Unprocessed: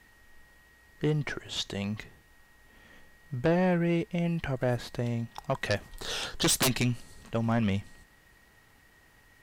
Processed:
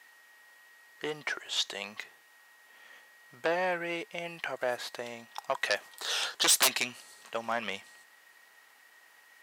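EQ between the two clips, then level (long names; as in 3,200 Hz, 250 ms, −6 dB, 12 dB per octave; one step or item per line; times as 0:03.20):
high-pass filter 700 Hz 12 dB per octave
+3.0 dB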